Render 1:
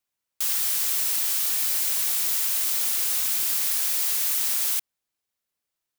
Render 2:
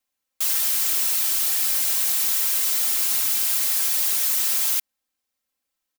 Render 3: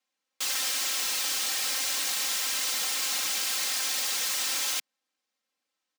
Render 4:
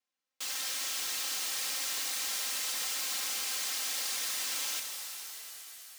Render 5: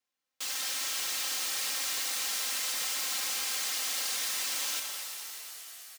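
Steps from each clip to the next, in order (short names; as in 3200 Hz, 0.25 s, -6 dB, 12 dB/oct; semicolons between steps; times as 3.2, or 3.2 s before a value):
comb 3.8 ms, depth 92%
three-band isolator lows -19 dB, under 180 Hz, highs -15 dB, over 7300 Hz; gain +1.5 dB
shimmer reverb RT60 3.3 s, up +7 st, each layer -2 dB, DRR 4.5 dB; gain -7.5 dB
speakerphone echo 0.21 s, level -7 dB; gain +1.5 dB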